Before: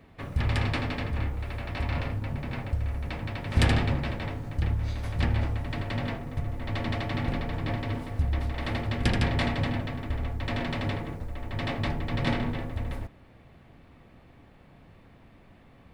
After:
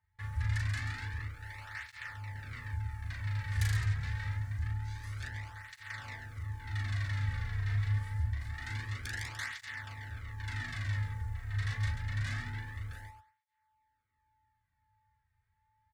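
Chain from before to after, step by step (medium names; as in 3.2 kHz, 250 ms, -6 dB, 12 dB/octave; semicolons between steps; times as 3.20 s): treble shelf 6.4 kHz -11.5 dB; saturation -27 dBFS, distortion -9 dB; whistle 870 Hz -43 dBFS; gate with hold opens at -35 dBFS; FFT filter 100 Hz 0 dB, 160 Hz -23 dB, 640 Hz -26 dB, 1.8 kHz +1 dB, 2.6 kHz -11 dB, 7.4 kHz +5 dB; on a send: loudspeakers at several distances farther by 13 m -2 dB, 47 m -8 dB; on the sum: cancelling through-zero flanger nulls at 0.26 Hz, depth 3.6 ms; trim +3 dB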